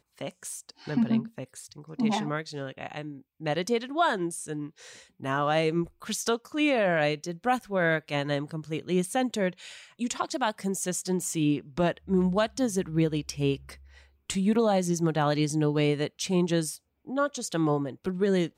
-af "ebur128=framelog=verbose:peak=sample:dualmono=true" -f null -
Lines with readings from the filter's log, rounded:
Integrated loudness:
  I:         -25.2 LUFS
  Threshold: -35.7 LUFS
Loudness range:
  LRA:         3.9 LU
  Threshold: -45.5 LUFS
  LRA low:   -27.9 LUFS
  LRA high:  -24.0 LUFS
Sample peak:
  Peak:      -13.0 dBFS